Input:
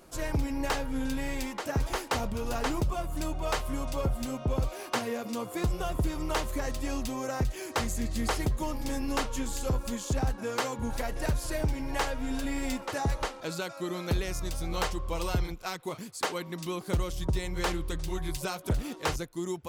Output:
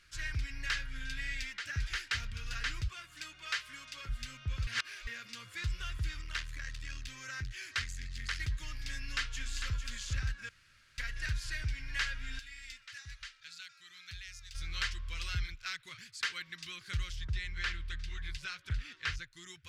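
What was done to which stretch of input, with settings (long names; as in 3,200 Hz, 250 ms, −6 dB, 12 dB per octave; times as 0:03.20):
0:01.20–0:02.30: notch filter 1,100 Hz, Q 11
0:02.88–0:04.09: high-pass filter 250 Hz
0:04.67–0:05.07: reverse
0:06.21–0:08.40: saturating transformer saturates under 170 Hz
0:08.95–0:09.77: delay throw 450 ms, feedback 10%, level −7.5 dB
0:10.49–0:10.98: fill with room tone
0:12.39–0:14.55: guitar amp tone stack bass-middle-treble 5-5-5
0:17.16–0:19.32: low-pass filter 3,500 Hz 6 dB per octave
whole clip: drawn EQ curve 110 Hz 0 dB, 190 Hz −17 dB, 810 Hz −25 dB, 1,600 Hz +8 dB, 5,000 Hz +5 dB, 15,000 Hz −16 dB; level −5.5 dB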